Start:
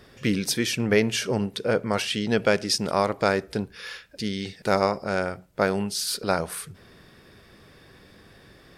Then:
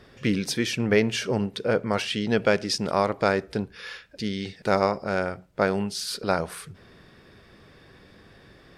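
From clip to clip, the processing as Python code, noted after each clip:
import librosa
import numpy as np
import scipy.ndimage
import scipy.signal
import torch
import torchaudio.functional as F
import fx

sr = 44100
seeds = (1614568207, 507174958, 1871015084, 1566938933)

y = fx.high_shelf(x, sr, hz=8300.0, db=-11.5)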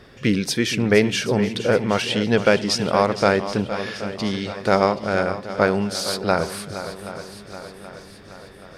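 y = fx.echo_swing(x, sr, ms=777, ratio=1.5, feedback_pct=50, wet_db=-12)
y = F.gain(torch.from_numpy(y), 4.5).numpy()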